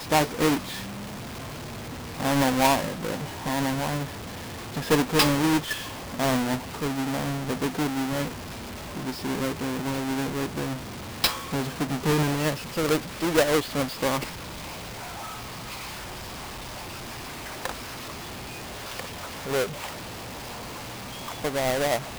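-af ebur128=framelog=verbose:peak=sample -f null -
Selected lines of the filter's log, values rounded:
Integrated loudness:
  I:         -28.1 LUFS
  Threshold: -38.1 LUFS
Loudness range:
  LRA:        10.2 LU
  Threshold: -48.1 LUFS
  LRA low:   -35.7 LUFS
  LRA high:  -25.5 LUFS
Sample peak:
  Peak:      -12.6 dBFS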